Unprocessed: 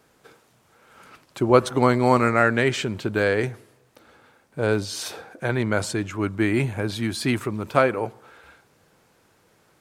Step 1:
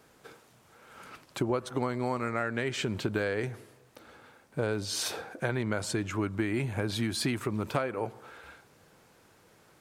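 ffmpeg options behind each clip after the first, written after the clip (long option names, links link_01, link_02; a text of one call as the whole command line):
ffmpeg -i in.wav -af "acompressor=threshold=-26dB:ratio=10" out.wav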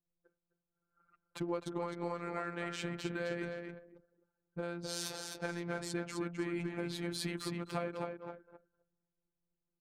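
ffmpeg -i in.wav -af "aecho=1:1:259|518|777|1036|1295:0.562|0.208|0.077|0.0285|0.0105,anlmdn=1,afftfilt=real='hypot(re,im)*cos(PI*b)':imag='0':win_size=1024:overlap=0.75,volume=-5dB" out.wav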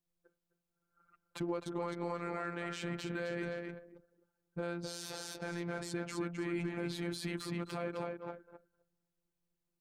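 ffmpeg -i in.wav -af "alimiter=level_in=3.5dB:limit=-24dB:level=0:latency=1:release=30,volume=-3.5dB,volume=2dB" out.wav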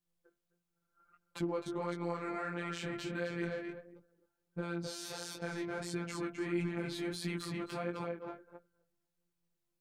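ffmpeg -i in.wav -af "flanger=delay=16.5:depth=3.9:speed=1.5,volume=3.5dB" out.wav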